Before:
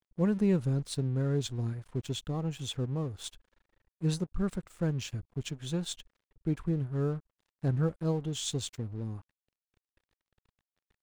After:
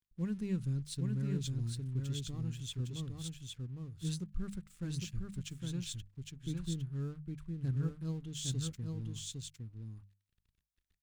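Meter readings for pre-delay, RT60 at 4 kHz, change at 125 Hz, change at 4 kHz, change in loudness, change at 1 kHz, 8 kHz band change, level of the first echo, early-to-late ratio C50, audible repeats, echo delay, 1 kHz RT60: no reverb, no reverb, -4.5 dB, -4.5 dB, -6.5 dB, -14.5 dB, -3.0 dB, -3.5 dB, no reverb, 1, 809 ms, no reverb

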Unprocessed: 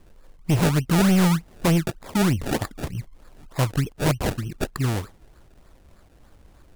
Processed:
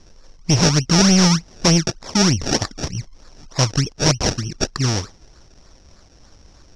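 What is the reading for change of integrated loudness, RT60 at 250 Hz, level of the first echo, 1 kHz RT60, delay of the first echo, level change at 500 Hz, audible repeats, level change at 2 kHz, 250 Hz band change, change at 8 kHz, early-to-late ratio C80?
+5.5 dB, no reverb, no echo, no reverb, no echo, +3.5 dB, no echo, +4.5 dB, +3.5 dB, +13.5 dB, no reverb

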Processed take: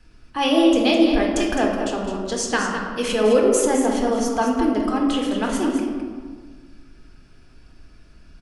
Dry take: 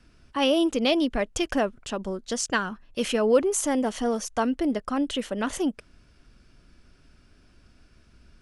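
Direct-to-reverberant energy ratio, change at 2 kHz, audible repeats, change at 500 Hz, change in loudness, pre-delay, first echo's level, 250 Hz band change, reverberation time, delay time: -1.0 dB, +5.0 dB, 1, +5.5 dB, +5.5 dB, 3 ms, -7.5 dB, +7.0 dB, 1.6 s, 209 ms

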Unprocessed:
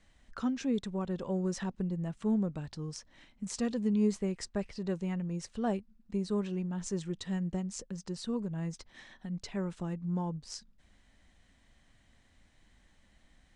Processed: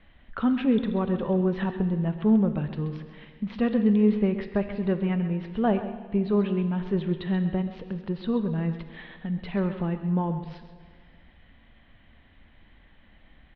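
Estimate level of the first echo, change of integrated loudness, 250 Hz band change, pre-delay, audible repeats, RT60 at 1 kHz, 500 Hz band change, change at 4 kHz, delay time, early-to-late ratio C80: -12.5 dB, +8.5 dB, +9.0 dB, 13 ms, 1, 1.9 s, +9.0 dB, +1.0 dB, 132 ms, 9.0 dB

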